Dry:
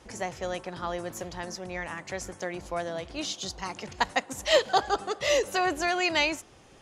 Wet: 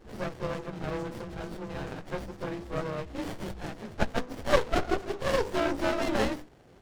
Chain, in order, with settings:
partials spread apart or drawn together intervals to 92%
mains-hum notches 50/100/150/200/250/300/350/400/450/500 Hz
windowed peak hold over 33 samples
level +4 dB

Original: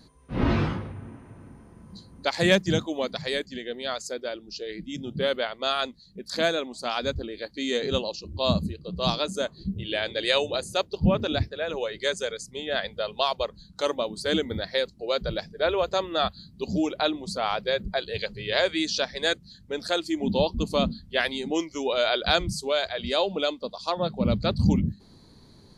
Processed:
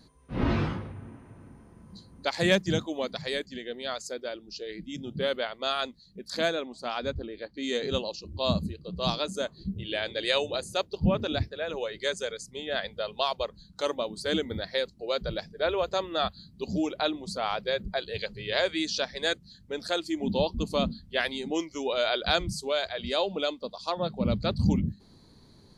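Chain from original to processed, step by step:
0:06.49–0:07.62: low-pass filter 4,000 Hz → 2,000 Hz 6 dB per octave
level −3 dB

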